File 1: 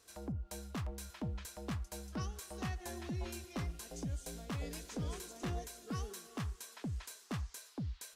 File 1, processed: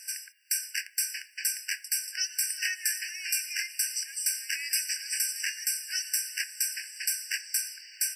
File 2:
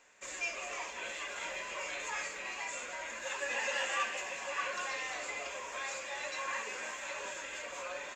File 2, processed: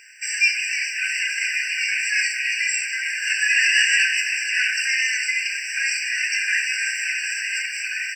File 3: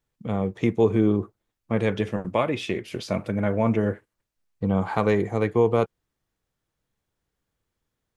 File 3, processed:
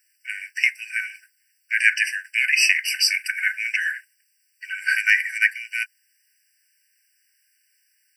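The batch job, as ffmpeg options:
-af "bass=frequency=250:gain=-12,treble=frequency=4000:gain=7,alimiter=level_in=13dB:limit=-1dB:release=50:level=0:latency=1,afftfilt=real='re*eq(mod(floor(b*sr/1024/1500),2),1)':imag='im*eq(mod(floor(b*sr/1024/1500),2),1)':win_size=1024:overlap=0.75,volume=5.5dB"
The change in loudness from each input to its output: +13.5, +17.5, +4.0 LU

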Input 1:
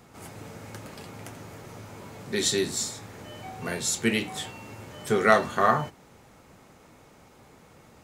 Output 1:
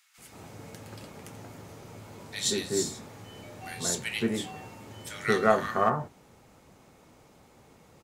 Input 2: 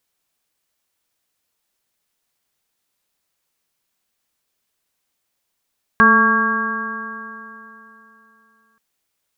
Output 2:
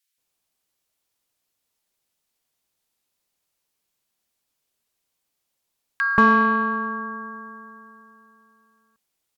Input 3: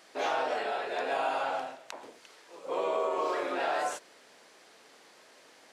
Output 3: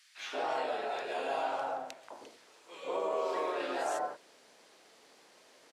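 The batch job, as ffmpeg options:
-filter_complex "[0:a]acrossover=split=1600[link_01][link_02];[link_01]adelay=180[link_03];[link_03][link_02]amix=inputs=2:normalize=0,aeval=exprs='0.668*(cos(1*acos(clip(val(0)/0.668,-1,1)))-cos(1*PI/2))+0.0376*(cos(3*acos(clip(val(0)/0.668,-1,1)))-cos(3*PI/2))+0.00944*(cos(7*acos(clip(val(0)/0.668,-1,1)))-cos(7*PI/2))':channel_layout=same" -ar 44100 -c:a libmp3lame -b:a 320k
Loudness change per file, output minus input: −3.0, −3.5, −3.5 LU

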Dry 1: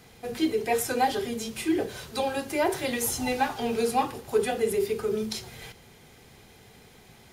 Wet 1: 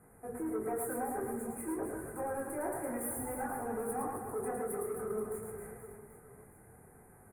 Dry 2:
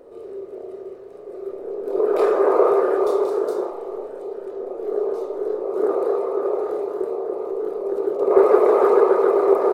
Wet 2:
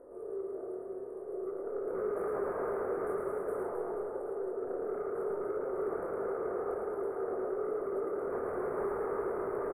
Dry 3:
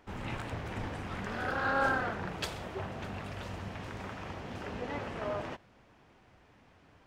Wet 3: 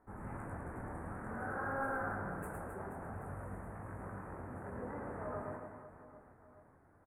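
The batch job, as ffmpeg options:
-filter_complex "[0:a]lowpass=frequency=11000:width=0.5412,lowpass=frequency=11000:width=1.3066,highshelf=frequency=5600:gain=10,acompressor=threshold=-22dB:ratio=2.5,asoftclip=type=tanh:threshold=-24.5dB,flanger=delay=18.5:depth=6.2:speed=0.53,volume=30dB,asoftclip=hard,volume=-30dB,asuperstop=centerf=4200:order=8:qfactor=0.53,asplit=2[link_01][link_02];[link_02]aecho=0:1:110|264|479.6|781.4|1204:0.631|0.398|0.251|0.158|0.1[link_03];[link_01][link_03]amix=inputs=2:normalize=0,volume=-3.5dB"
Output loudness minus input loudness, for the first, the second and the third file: −10.0, −16.0, −6.5 LU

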